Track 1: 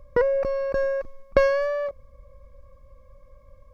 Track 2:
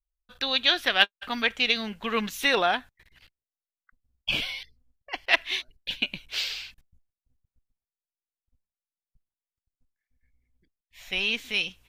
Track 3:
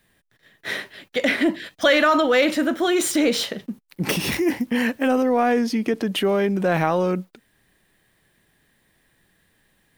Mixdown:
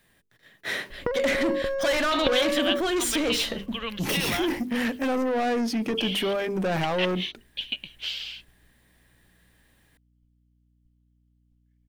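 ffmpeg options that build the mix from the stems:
-filter_complex "[0:a]acompressor=threshold=-27dB:ratio=12,adelay=900,volume=2dB[a];[1:a]equalizer=f=3.1k:w=4.1:g=12,acompressor=threshold=-26dB:ratio=2,aeval=exprs='val(0)+0.00112*(sin(2*PI*60*n/s)+sin(2*PI*2*60*n/s)/2+sin(2*PI*3*60*n/s)/3+sin(2*PI*4*60*n/s)/4+sin(2*PI*5*60*n/s)/5)':c=same,adelay=1700,volume=-5dB[b];[2:a]bandreject=f=50:t=h:w=6,bandreject=f=100:t=h:w=6,bandreject=f=150:t=h:w=6,bandreject=f=200:t=h:w=6,bandreject=f=250:t=h:w=6,bandreject=f=300:t=h:w=6,bandreject=f=350:t=h:w=6,bandreject=f=400:t=h:w=6,bandreject=f=450:t=h:w=6,asoftclip=type=tanh:threshold=-22dB,volume=0dB[c];[a][b][c]amix=inputs=3:normalize=0"

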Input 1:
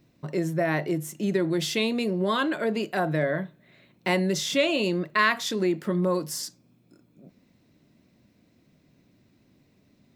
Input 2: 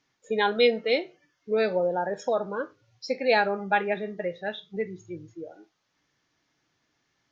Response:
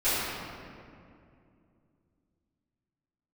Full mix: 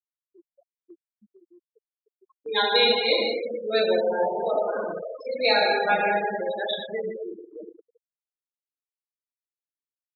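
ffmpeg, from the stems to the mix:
-filter_complex "[0:a]bandreject=f=395.6:t=h:w=4,bandreject=f=791.2:t=h:w=4,acrossover=split=350|4100[a][b][c];[a]acompressor=threshold=-36dB:ratio=4[d];[b]acompressor=threshold=-33dB:ratio=4[e];[c]acompressor=threshold=-41dB:ratio=4[f];[d][e][f]amix=inputs=3:normalize=0,volume=-11.5dB,asplit=2[g][h];[1:a]highpass=f=460:p=1,equalizer=f=3.9k:w=3.4:g=11,adelay=2150,volume=0dB,asplit=3[i][j][k];[j]volume=-10.5dB[l];[k]volume=-14.5dB[m];[h]apad=whole_len=417422[n];[i][n]sidechaincompress=threshold=-48dB:ratio=16:attack=6.8:release=212[o];[2:a]atrim=start_sample=2205[p];[l][p]afir=irnorm=-1:irlink=0[q];[m]aecho=0:1:211:1[r];[g][o][q][r]amix=inputs=4:normalize=0,afftfilt=real='re*gte(hypot(re,im),0.0794)':imag='im*gte(hypot(re,im),0.0794)':win_size=1024:overlap=0.75,agate=range=-8dB:threshold=-45dB:ratio=16:detection=peak"

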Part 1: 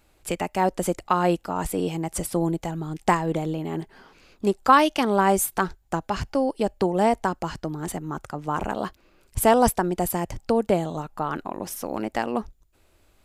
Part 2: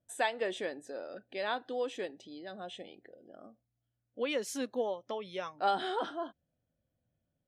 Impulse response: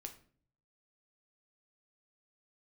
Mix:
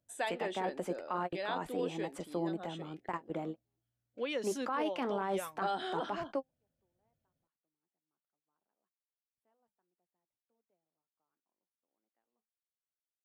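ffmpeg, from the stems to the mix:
-filter_complex "[0:a]acrossover=split=180 3200:gain=0.0794 1 0.2[a][b][c];[a][b][c]amix=inputs=3:normalize=0,flanger=delay=5:depth=2.7:regen=-71:speed=1.9:shape=triangular,volume=-5.5dB[d];[1:a]volume=-3dB,asplit=2[e][f];[f]apad=whole_len=584203[g];[d][g]sidechaingate=range=-51dB:threshold=-56dB:ratio=16:detection=peak[h];[h][e]amix=inputs=2:normalize=0,alimiter=level_in=1dB:limit=-24dB:level=0:latency=1:release=11,volume=-1dB"

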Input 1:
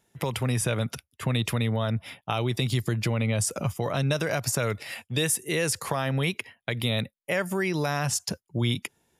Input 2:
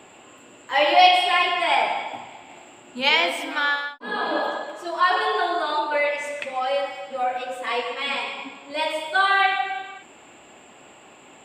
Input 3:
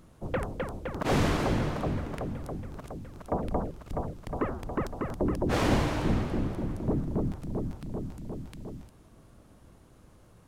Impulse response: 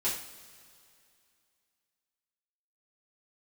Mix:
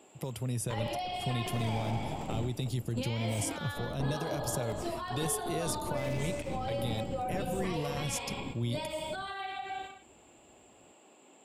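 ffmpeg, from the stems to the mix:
-filter_complex "[0:a]volume=-7dB[a];[1:a]highpass=230,acompressor=threshold=-28dB:ratio=2.5,volume=2dB[b];[2:a]highpass=51,aeval=exprs='(tanh(39.8*val(0)+0.8)-tanh(0.8))/39.8':c=same,adelay=450,volume=1dB[c];[b][c]amix=inputs=2:normalize=0,agate=range=-8dB:threshold=-34dB:ratio=16:detection=peak,alimiter=limit=-23dB:level=0:latency=1:release=102,volume=0dB[d];[a][d]amix=inputs=2:normalize=0,equalizer=f=1.7k:t=o:w=2.2:g=-11.5"

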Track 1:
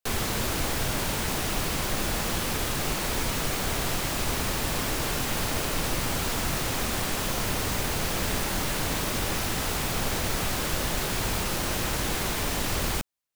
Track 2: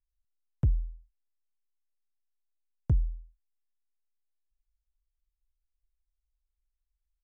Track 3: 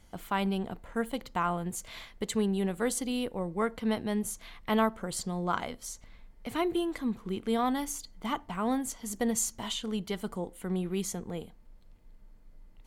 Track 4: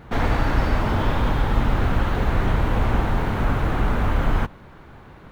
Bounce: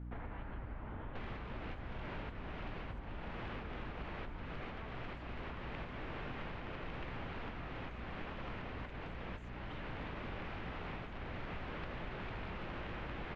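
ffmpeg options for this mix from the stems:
-filter_complex "[0:a]aeval=exprs='(mod(8.41*val(0)+1,2)-1)/8.41':c=same,adelay=1100,volume=-1dB[a];[1:a]volume=-17dB[b];[2:a]aemphasis=mode=production:type=riaa,volume=-19dB,asplit=2[c][d];[3:a]volume=-18dB[e];[d]apad=whole_len=637561[f];[a][f]sidechaincompress=threshold=-50dB:ratio=8:attack=23:release=479[g];[g][b][c][e]amix=inputs=4:normalize=0,lowpass=f=2.7k:w=0.5412,lowpass=f=2.7k:w=1.3066,aeval=exprs='val(0)+0.00708*(sin(2*PI*60*n/s)+sin(2*PI*2*60*n/s)/2+sin(2*PI*3*60*n/s)/3+sin(2*PI*4*60*n/s)/4+sin(2*PI*5*60*n/s)/5)':c=same,acompressor=threshold=-42dB:ratio=5"

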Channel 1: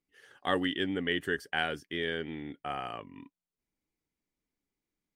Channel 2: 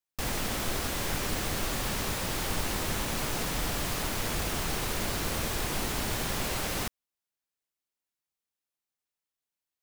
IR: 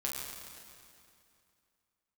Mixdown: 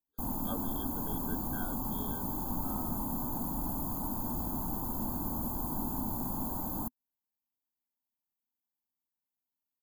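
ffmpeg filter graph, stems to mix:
-filter_complex "[0:a]volume=-13.5dB[a];[1:a]firequalizer=gain_entry='entry(130,0);entry(250,10);entry(440,-10);entry(910,6);entry(1400,-16);entry(2300,-3);entry(3700,-28);entry(5300,-4);entry(8300,-11);entry(13000,10)':delay=0.05:min_phase=1,volume=-5dB[b];[a][b]amix=inputs=2:normalize=0,afftfilt=real='re*eq(mod(floor(b*sr/1024/1600),2),0)':imag='im*eq(mod(floor(b*sr/1024/1600),2),0)':win_size=1024:overlap=0.75"

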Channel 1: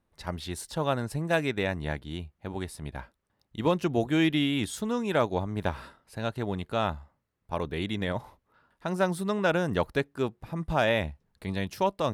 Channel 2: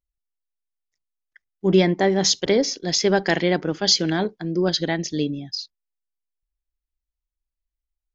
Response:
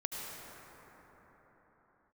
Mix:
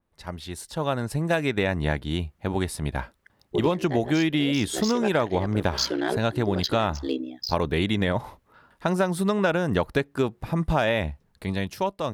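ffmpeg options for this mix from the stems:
-filter_complex "[0:a]dynaudnorm=f=350:g=7:m=12dB,adynamicequalizer=threshold=0.0282:dfrequency=3400:dqfactor=0.7:tfrequency=3400:tqfactor=0.7:attack=5:release=100:ratio=0.375:range=2:mode=cutabove:tftype=highshelf,volume=-1dB,asplit=2[a][b];[1:a]highpass=f=260:w=0.5412,highpass=f=260:w=1.3066,aeval=exprs='val(0)*sin(2*PI*32*n/s)':c=same,adynamicsmooth=sensitivity=4.5:basefreq=4.7k,adelay=1900,volume=1dB[c];[b]apad=whole_len=442788[d];[c][d]sidechaincompress=threshold=-19dB:ratio=8:attack=6.3:release=329[e];[a][e]amix=inputs=2:normalize=0,acompressor=threshold=-19dB:ratio=6"

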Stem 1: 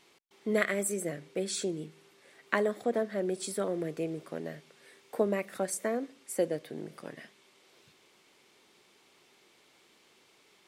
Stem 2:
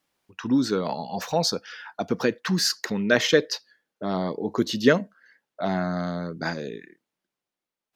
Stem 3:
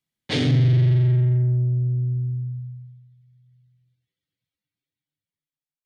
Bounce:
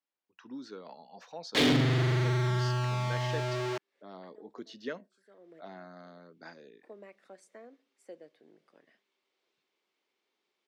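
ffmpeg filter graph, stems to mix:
-filter_complex "[0:a]adelay=1700,volume=-18.5dB[a];[1:a]volume=-19dB,asplit=2[b][c];[2:a]aeval=exprs='val(0)*gte(abs(val(0)),0.0473)':c=same,adelay=1250,volume=2dB[d];[c]apad=whole_len=545957[e];[a][e]sidechaincompress=threshold=-56dB:ratio=8:attack=6.5:release=360[f];[f][b][d]amix=inputs=3:normalize=0,acrossover=split=210 6700:gain=0.126 1 0.1[g][h][i];[g][h][i]amix=inputs=3:normalize=0,asoftclip=type=hard:threshold=-18.5dB"

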